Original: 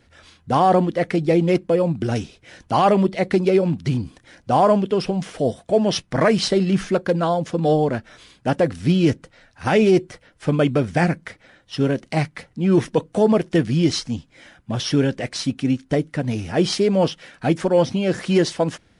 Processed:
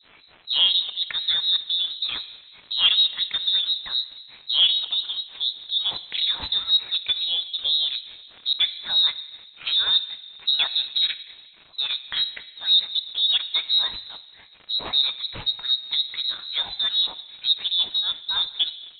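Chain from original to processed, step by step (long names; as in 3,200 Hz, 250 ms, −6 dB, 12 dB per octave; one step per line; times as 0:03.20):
stylus tracing distortion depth 0.059 ms
surface crackle 350 per second −31 dBFS
healed spectral selection 0:17.95–0:18.46, 860–2,300 Hz
transient designer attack −1 dB, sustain −6 dB
two-band tremolo in antiphase 4 Hz, depth 100%, crossover 410 Hz
dense smooth reverb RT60 1.7 s, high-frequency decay 0.45×, DRR 12.5 dB
voice inversion scrambler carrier 4,000 Hz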